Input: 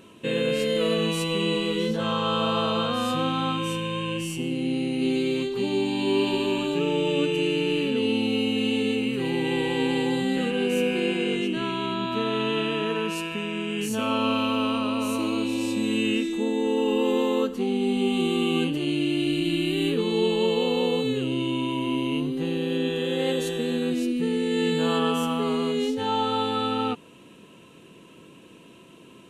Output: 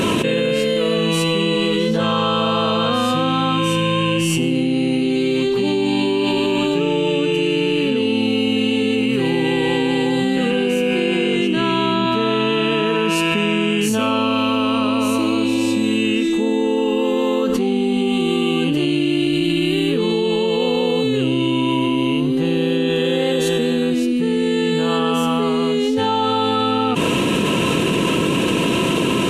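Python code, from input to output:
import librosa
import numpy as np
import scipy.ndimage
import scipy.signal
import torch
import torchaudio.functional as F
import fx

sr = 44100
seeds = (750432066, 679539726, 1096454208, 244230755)

y = fx.high_shelf(x, sr, hz=11000.0, db=-5.0)
y = fx.env_flatten(y, sr, amount_pct=100)
y = y * 10.0 ** (2.5 / 20.0)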